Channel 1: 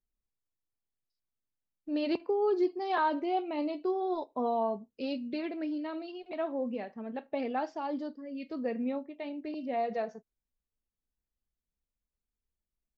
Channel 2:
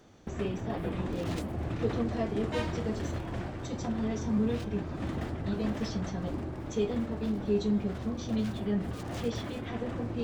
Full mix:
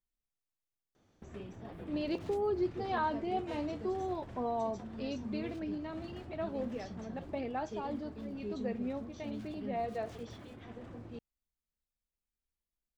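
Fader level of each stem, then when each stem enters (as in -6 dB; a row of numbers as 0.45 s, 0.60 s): -4.5 dB, -13.0 dB; 0.00 s, 0.95 s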